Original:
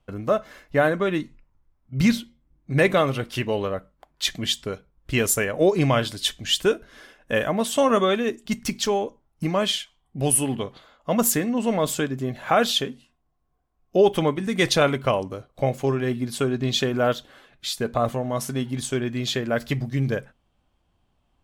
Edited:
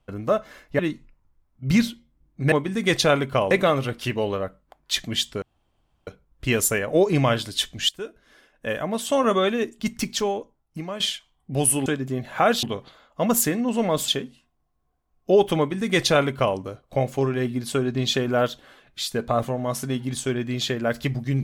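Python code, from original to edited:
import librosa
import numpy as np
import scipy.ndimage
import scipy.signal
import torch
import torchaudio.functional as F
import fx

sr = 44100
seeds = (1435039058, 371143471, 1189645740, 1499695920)

y = fx.edit(x, sr, fx.cut(start_s=0.79, length_s=0.3),
    fx.insert_room_tone(at_s=4.73, length_s=0.65),
    fx.fade_in_from(start_s=6.55, length_s=1.6, floor_db=-16.5),
    fx.fade_out_to(start_s=8.7, length_s=0.96, floor_db=-11.5),
    fx.move(start_s=11.97, length_s=0.77, to_s=10.52),
    fx.duplicate(start_s=14.24, length_s=0.99, to_s=2.82), tone=tone)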